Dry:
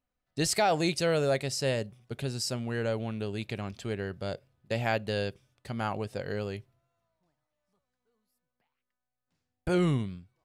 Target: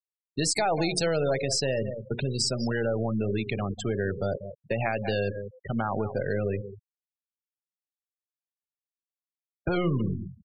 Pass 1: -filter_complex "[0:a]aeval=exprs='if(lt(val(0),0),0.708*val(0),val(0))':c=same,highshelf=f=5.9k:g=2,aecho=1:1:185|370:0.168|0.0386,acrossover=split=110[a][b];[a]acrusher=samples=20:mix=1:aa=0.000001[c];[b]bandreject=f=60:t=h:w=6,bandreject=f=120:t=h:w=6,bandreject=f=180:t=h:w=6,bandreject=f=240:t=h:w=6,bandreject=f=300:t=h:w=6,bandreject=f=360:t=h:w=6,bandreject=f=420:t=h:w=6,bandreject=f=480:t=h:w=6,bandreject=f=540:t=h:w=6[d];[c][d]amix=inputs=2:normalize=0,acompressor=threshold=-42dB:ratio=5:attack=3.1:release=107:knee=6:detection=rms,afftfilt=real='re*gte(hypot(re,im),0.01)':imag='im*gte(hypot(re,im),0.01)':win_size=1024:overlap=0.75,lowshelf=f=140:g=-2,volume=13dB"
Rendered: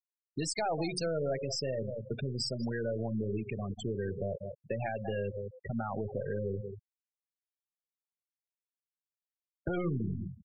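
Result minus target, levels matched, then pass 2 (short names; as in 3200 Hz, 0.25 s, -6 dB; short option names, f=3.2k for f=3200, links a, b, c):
compressor: peak gain reduction +6.5 dB
-filter_complex "[0:a]aeval=exprs='if(lt(val(0),0),0.708*val(0),val(0))':c=same,highshelf=f=5.9k:g=2,aecho=1:1:185|370:0.168|0.0386,acrossover=split=110[a][b];[a]acrusher=samples=20:mix=1:aa=0.000001[c];[b]bandreject=f=60:t=h:w=6,bandreject=f=120:t=h:w=6,bandreject=f=180:t=h:w=6,bandreject=f=240:t=h:w=6,bandreject=f=300:t=h:w=6,bandreject=f=360:t=h:w=6,bandreject=f=420:t=h:w=6,bandreject=f=480:t=h:w=6,bandreject=f=540:t=h:w=6[d];[c][d]amix=inputs=2:normalize=0,acompressor=threshold=-34dB:ratio=5:attack=3.1:release=107:knee=6:detection=rms,afftfilt=real='re*gte(hypot(re,im),0.01)':imag='im*gte(hypot(re,im),0.01)':win_size=1024:overlap=0.75,lowshelf=f=140:g=-2,volume=13dB"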